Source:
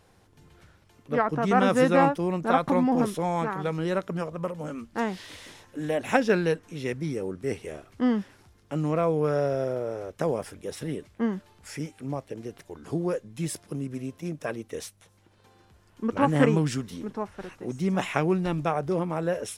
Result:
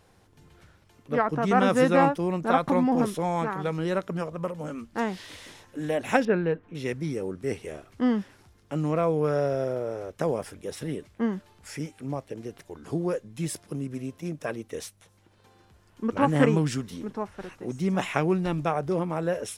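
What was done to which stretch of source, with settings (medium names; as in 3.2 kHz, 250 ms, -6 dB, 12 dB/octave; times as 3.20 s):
6.25–6.75 s: distance through air 500 m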